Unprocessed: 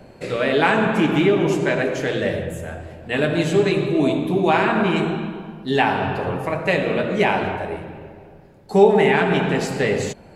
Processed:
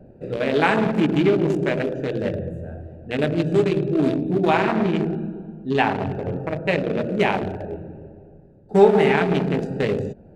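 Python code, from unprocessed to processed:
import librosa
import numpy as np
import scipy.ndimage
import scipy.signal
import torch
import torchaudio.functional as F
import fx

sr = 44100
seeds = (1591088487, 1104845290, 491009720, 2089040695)

y = fx.wiener(x, sr, points=41)
y = fx.high_shelf(y, sr, hz=7200.0, db=-6.0, at=(4.71, 7.02))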